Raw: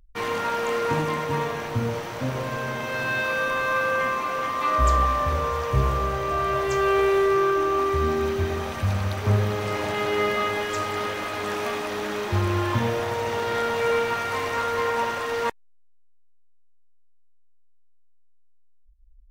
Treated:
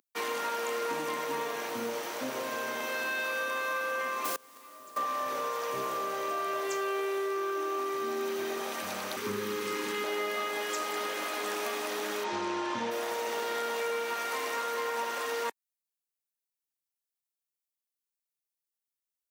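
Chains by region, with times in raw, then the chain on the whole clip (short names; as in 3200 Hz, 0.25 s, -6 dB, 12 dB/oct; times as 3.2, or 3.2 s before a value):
4.24–4.96 low shelf 490 Hz +7.5 dB + added noise pink -30 dBFS + flipped gate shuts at -14 dBFS, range -27 dB
9.16–10.04 Butterworth band-stop 680 Hz, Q 1.6 + low shelf 240 Hz +9 dB
12.23–12.9 LPF 6800 Hz 24 dB/oct + low shelf 130 Hz +10.5 dB + whine 920 Hz -29 dBFS
whole clip: HPF 250 Hz 24 dB/oct; high shelf 5400 Hz +11.5 dB; compressor 4:1, threshold -26 dBFS; gain -4 dB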